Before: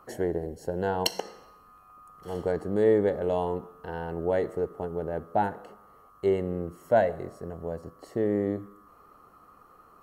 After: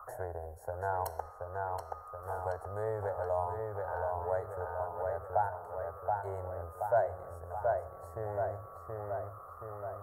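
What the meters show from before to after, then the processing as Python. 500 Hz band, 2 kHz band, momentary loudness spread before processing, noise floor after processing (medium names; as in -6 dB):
-7.5 dB, -5.5 dB, 14 LU, -50 dBFS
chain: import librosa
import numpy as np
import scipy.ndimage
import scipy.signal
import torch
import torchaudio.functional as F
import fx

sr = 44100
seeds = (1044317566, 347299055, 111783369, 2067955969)

y = fx.curve_eq(x, sr, hz=(110.0, 170.0, 310.0, 630.0, 1400.0, 2700.0, 11000.0), db=(0, -26, -25, 2, 4, -30, 3))
y = fx.echo_filtered(y, sr, ms=726, feedback_pct=54, hz=4000.0, wet_db=-4)
y = fx.band_squash(y, sr, depth_pct=40)
y = y * librosa.db_to_amplitude(-4.5)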